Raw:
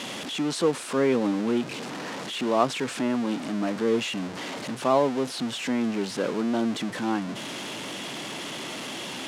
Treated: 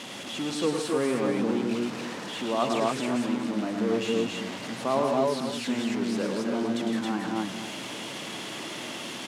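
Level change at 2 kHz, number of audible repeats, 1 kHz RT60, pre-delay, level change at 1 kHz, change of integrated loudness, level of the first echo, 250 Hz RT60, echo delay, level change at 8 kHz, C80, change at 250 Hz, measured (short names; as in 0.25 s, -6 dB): -1.5 dB, 4, none, none, -1.5 dB, -1.5 dB, -6.5 dB, none, 0.106 s, -1.5 dB, none, -1.0 dB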